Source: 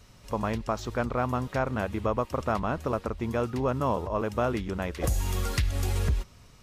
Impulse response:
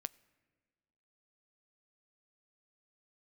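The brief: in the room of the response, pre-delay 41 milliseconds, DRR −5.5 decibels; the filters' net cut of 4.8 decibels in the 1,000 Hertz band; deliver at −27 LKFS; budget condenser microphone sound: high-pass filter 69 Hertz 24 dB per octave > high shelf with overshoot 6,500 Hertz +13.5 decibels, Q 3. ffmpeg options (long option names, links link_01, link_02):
-filter_complex "[0:a]equalizer=frequency=1000:width_type=o:gain=-6,asplit=2[link_01][link_02];[1:a]atrim=start_sample=2205,adelay=41[link_03];[link_02][link_03]afir=irnorm=-1:irlink=0,volume=8.5dB[link_04];[link_01][link_04]amix=inputs=2:normalize=0,highpass=frequency=69:width=0.5412,highpass=frequency=69:width=1.3066,highshelf=frequency=6500:width_type=q:width=3:gain=13.5,volume=-5.5dB"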